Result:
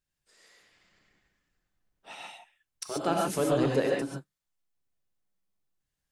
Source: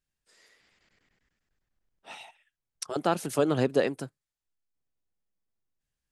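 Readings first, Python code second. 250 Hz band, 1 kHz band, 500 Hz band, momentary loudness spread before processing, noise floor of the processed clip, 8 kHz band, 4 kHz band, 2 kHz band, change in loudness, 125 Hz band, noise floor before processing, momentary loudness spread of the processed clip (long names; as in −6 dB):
0.0 dB, +0.5 dB, −0.5 dB, 20 LU, below −85 dBFS, +1.5 dB, +0.5 dB, 0.0 dB, 0.0 dB, 0.0 dB, below −85 dBFS, 19 LU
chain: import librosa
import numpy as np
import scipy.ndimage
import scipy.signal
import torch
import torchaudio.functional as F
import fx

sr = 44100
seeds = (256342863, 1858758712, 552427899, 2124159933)

p1 = 10.0 ** (-28.5 / 20.0) * np.tanh(x / 10.0 ** (-28.5 / 20.0))
p2 = x + (p1 * 10.0 ** (-4.0 / 20.0))
p3 = fx.rev_gated(p2, sr, seeds[0], gate_ms=160, shape='rising', drr_db=-1.0)
y = p3 * 10.0 ** (-5.5 / 20.0)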